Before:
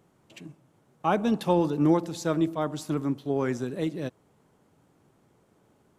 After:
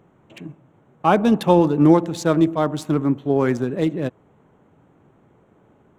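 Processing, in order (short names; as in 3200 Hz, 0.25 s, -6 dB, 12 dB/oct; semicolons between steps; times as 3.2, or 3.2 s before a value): Wiener smoothing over 9 samples; gain +8.5 dB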